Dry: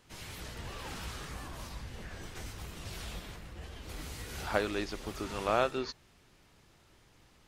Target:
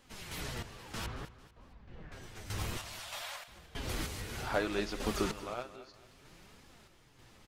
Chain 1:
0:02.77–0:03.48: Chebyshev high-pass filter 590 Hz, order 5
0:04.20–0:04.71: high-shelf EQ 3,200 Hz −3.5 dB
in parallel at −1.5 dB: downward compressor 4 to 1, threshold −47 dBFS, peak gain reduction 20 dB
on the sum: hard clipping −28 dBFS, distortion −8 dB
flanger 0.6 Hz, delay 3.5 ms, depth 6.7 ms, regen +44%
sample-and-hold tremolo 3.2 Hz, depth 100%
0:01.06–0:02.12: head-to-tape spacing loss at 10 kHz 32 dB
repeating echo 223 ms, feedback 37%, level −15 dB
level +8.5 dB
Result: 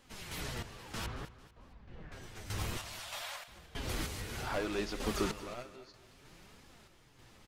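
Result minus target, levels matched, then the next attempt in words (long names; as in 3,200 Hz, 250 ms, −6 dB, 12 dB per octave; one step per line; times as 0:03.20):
hard clipping: distortion +12 dB
0:02.77–0:03.48: Chebyshev high-pass filter 590 Hz, order 5
0:04.20–0:04.71: high-shelf EQ 3,200 Hz −3.5 dB
in parallel at −1.5 dB: downward compressor 4 to 1, threshold −47 dBFS, peak gain reduction 20 dB
on the sum: hard clipping −17.5 dBFS, distortion −20 dB
flanger 0.6 Hz, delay 3.5 ms, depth 6.7 ms, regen +44%
sample-and-hold tremolo 3.2 Hz, depth 100%
0:01.06–0:02.12: head-to-tape spacing loss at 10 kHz 32 dB
repeating echo 223 ms, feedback 37%, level −15 dB
level +8.5 dB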